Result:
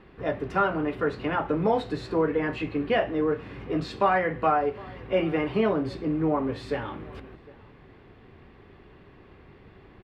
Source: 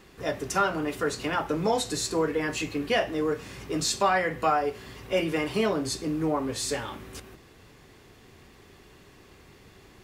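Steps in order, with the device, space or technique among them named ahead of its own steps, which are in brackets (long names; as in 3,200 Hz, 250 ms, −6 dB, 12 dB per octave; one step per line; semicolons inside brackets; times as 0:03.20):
shout across a valley (high-frequency loss of the air 440 metres; slap from a distant wall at 130 metres, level −22 dB)
level +3 dB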